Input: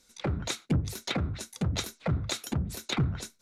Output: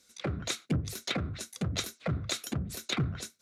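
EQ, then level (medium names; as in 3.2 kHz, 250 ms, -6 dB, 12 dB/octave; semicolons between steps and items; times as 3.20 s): high-pass 68 Hz; bass shelf 490 Hz -3 dB; peaking EQ 890 Hz -11 dB 0.21 oct; 0.0 dB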